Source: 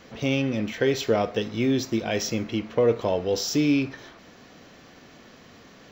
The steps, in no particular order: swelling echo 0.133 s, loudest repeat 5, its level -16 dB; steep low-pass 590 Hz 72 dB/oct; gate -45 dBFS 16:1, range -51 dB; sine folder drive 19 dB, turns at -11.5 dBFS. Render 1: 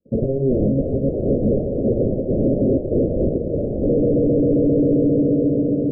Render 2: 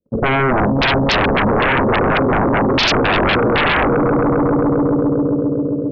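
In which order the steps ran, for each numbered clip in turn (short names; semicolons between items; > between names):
swelling echo > gate > sine folder > steep low-pass; steep low-pass > gate > swelling echo > sine folder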